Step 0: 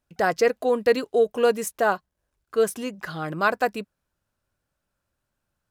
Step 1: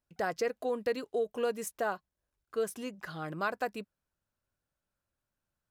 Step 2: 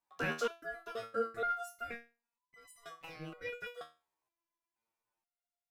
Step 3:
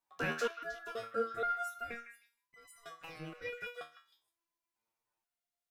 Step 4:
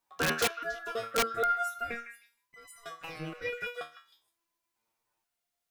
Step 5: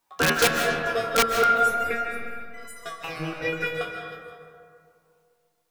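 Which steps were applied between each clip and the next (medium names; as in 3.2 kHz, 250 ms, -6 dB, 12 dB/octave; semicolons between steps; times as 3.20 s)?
compression 2:1, threshold -21 dBFS, peak gain reduction 4.5 dB; trim -8.5 dB
ring modulator 930 Hz; resonator arpeggio 2.1 Hz 79–1000 Hz; trim +9 dB
repeats whose band climbs or falls 156 ms, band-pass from 1.7 kHz, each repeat 1.4 oct, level -7 dB
integer overflow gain 26.5 dB; trim +6.5 dB
algorithmic reverb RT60 2.3 s, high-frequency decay 0.4×, pre-delay 110 ms, DRR 3 dB; trim +7.5 dB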